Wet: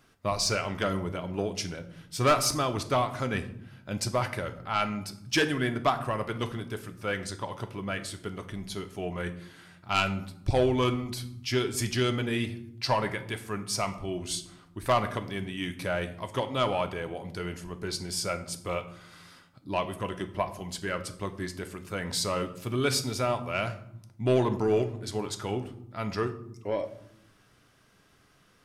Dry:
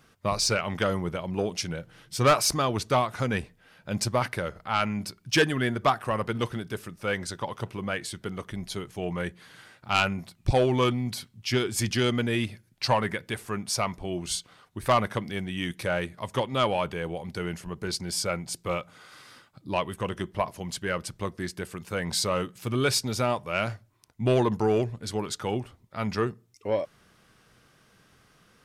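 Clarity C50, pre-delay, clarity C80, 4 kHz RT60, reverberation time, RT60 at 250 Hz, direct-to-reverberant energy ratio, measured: 13.5 dB, 3 ms, 16.5 dB, 0.45 s, 0.80 s, 1.4 s, 7.0 dB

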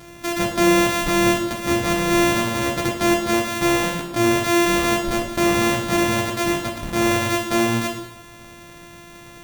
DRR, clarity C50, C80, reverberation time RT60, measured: 0.5 dB, 5.5 dB, 8.0 dB, 0.85 s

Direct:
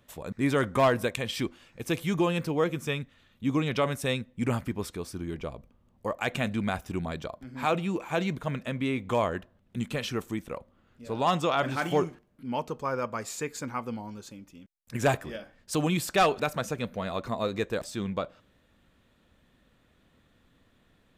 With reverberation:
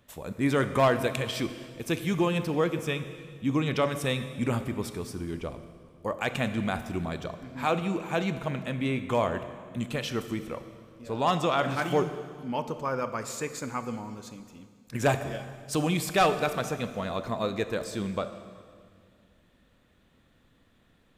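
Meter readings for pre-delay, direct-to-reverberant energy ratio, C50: 23 ms, 10.0 dB, 11.0 dB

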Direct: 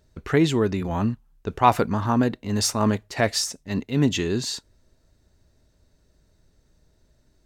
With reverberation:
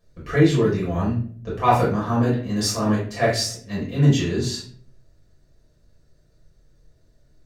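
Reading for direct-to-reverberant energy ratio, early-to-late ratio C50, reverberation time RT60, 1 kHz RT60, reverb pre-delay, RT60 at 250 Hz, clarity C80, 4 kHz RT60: −7.5 dB, 5.0 dB, 0.50 s, 0.40 s, 4 ms, 0.70 s, 10.0 dB, 0.35 s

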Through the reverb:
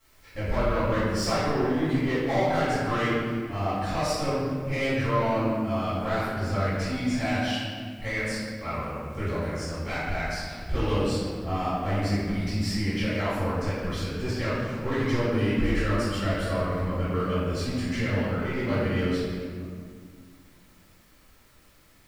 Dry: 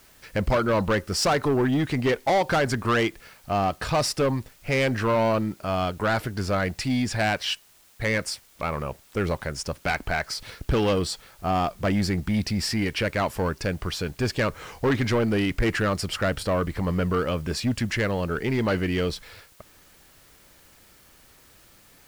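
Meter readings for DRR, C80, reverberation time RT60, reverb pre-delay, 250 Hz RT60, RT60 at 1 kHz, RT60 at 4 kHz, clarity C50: −15.0 dB, 0.0 dB, 2.0 s, 3 ms, 3.0 s, 1.7 s, 1.2 s, −3.0 dB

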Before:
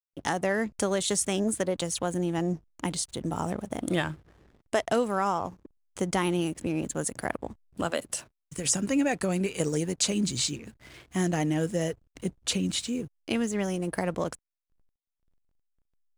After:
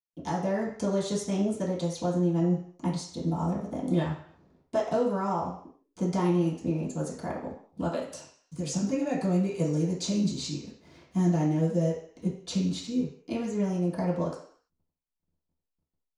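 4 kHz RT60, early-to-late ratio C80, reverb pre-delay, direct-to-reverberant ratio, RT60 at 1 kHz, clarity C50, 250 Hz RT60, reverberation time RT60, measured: 0.60 s, 9.0 dB, 3 ms, −11.0 dB, 0.55 s, 5.5 dB, 0.50 s, 0.55 s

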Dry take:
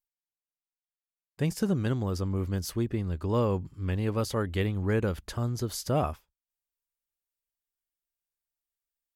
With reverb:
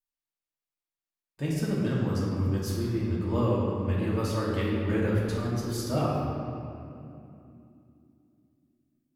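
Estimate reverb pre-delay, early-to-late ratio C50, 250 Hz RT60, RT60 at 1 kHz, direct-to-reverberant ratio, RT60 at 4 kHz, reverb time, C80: 3 ms, −1.5 dB, 4.5 s, 2.5 s, −6.5 dB, 1.7 s, 2.8 s, 0.5 dB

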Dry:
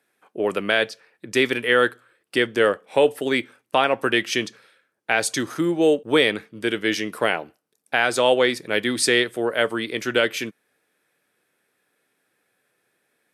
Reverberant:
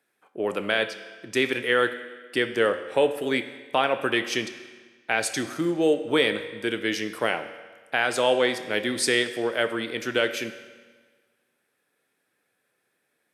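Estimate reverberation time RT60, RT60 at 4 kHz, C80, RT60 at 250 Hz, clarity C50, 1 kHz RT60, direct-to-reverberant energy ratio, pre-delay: 1.5 s, 1.3 s, 12.5 dB, 1.5 s, 11.0 dB, 1.5 s, 9.5 dB, 21 ms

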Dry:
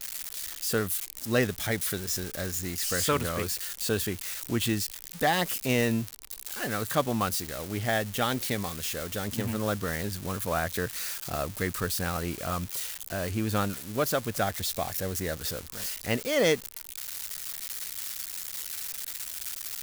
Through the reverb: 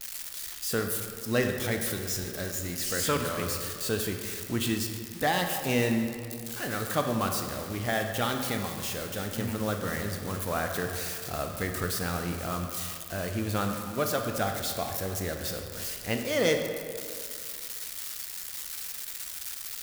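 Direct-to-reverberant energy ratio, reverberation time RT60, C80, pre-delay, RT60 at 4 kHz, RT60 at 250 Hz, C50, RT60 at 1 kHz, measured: 4.0 dB, 2.3 s, 6.5 dB, 18 ms, 1.3 s, 2.4 s, 5.0 dB, 2.3 s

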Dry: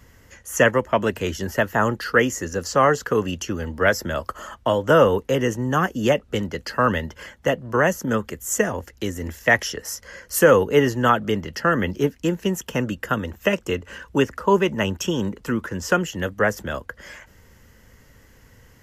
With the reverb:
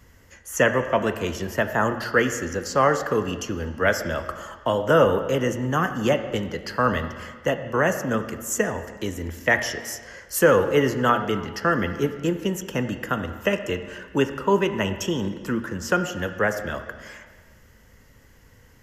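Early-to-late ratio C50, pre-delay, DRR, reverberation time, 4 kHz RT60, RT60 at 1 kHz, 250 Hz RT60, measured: 10.0 dB, 6 ms, 8.0 dB, 1.5 s, 1.4 s, 1.4 s, 1.5 s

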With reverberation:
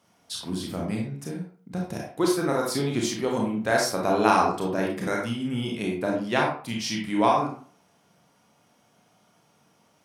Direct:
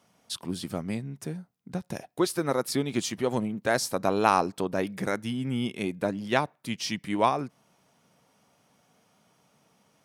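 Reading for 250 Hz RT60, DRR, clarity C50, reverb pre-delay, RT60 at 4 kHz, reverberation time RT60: 0.45 s, −1.0 dB, 3.0 dB, 27 ms, 0.30 s, 0.45 s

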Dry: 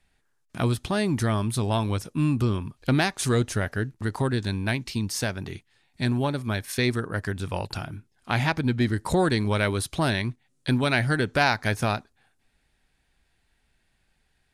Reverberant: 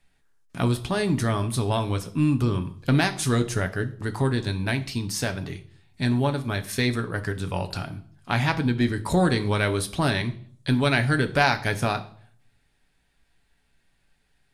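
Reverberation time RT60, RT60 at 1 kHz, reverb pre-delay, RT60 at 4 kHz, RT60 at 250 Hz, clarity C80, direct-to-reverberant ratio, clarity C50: 0.55 s, 0.50 s, 7 ms, 0.45 s, 0.60 s, 19.5 dB, 7.0 dB, 16.0 dB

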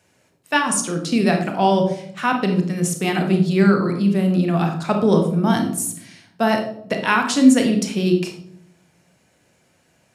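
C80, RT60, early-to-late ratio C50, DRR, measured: 10.5 dB, 0.70 s, 7.0 dB, 3.5 dB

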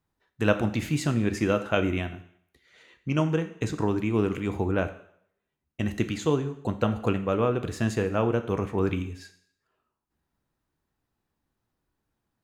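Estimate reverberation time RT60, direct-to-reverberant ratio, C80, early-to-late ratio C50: 0.65 s, 8.0 dB, 15.5 dB, 13.0 dB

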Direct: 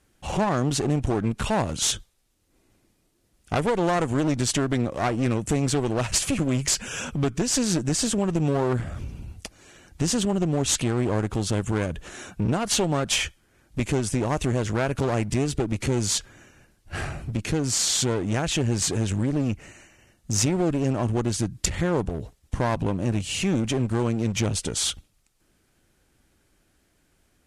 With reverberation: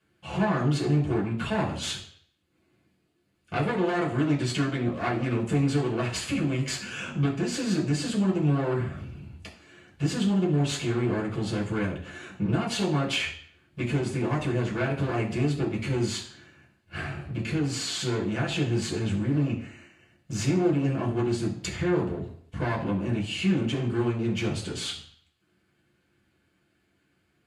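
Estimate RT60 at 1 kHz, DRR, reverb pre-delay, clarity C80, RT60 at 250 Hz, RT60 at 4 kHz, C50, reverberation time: 0.55 s, −5.5 dB, 3 ms, 12.5 dB, 0.55 s, 0.60 s, 8.5 dB, 0.55 s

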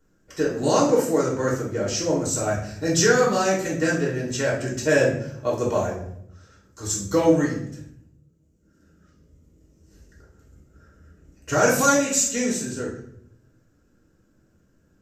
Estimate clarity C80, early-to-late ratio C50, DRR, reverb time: 9.0 dB, 4.5 dB, −5.0 dB, 0.70 s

